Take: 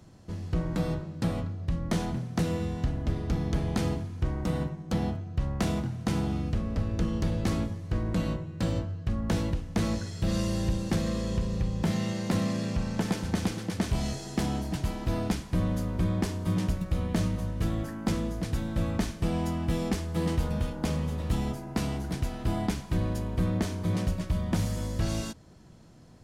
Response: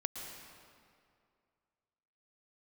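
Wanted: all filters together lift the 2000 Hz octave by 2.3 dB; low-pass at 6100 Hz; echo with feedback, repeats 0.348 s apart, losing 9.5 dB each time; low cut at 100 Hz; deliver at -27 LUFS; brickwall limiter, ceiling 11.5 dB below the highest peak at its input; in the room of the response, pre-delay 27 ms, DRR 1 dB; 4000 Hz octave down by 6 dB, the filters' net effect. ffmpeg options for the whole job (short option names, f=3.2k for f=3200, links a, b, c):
-filter_complex "[0:a]highpass=100,lowpass=6.1k,equalizer=f=2k:t=o:g=5,equalizer=f=4k:t=o:g=-9,alimiter=level_in=1.5dB:limit=-24dB:level=0:latency=1,volume=-1.5dB,aecho=1:1:348|696|1044|1392:0.335|0.111|0.0365|0.012,asplit=2[a][b];[1:a]atrim=start_sample=2205,adelay=27[c];[b][c]afir=irnorm=-1:irlink=0,volume=-2dB[d];[a][d]amix=inputs=2:normalize=0,volume=5dB"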